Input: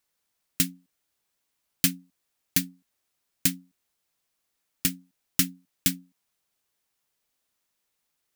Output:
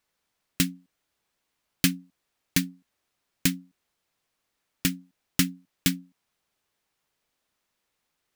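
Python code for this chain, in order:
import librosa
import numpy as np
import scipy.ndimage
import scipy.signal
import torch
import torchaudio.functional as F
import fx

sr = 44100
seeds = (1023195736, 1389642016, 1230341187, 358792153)

y = fx.high_shelf(x, sr, hz=5600.0, db=-10.0)
y = F.gain(torch.from_numpy(y), 4.5).numpy()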